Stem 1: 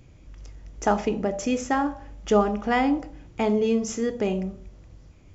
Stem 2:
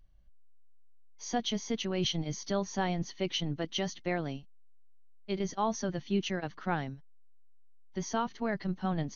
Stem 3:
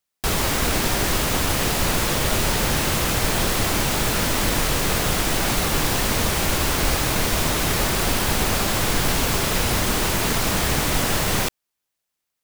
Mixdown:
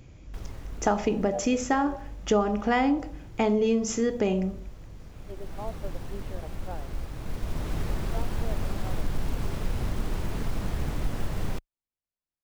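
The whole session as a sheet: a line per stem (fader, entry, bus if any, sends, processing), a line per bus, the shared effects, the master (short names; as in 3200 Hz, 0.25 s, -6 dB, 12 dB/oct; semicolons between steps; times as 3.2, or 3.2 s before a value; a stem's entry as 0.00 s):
+2.0 dB, 0.00 s, no send, dry
-1.5 dB, 0.00 s, muted 1.96–4.61, no send, band-pass 570 Hz, Q 2.6
7.11 s -23 dB -> 7.71 s -15.5 dB, 0.10 s, no send, tilt -3 dB/oct; short-mantissa float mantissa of 4-bit; auto duck -13 dB, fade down 1.75 s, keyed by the first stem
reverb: off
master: compressor 2.5:1, threshold -21 dBFS, peak gain reduction 6.5 dB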